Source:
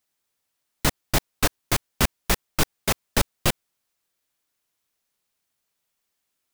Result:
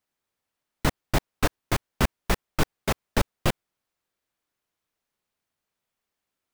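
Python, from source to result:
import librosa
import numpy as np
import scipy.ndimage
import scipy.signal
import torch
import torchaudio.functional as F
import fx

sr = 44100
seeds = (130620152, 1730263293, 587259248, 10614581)

y = fx.high_shelf(x, sr, hz=3100.0, db=-10.0)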